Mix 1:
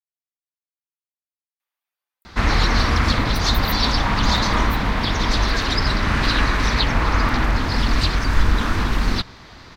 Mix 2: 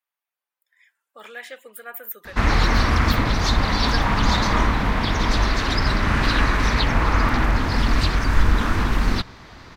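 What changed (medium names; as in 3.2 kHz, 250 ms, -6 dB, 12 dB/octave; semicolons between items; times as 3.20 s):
speech: entry -1.60 s; master: add peaking EQ 4.3 kHz -4 dB 1.1 oct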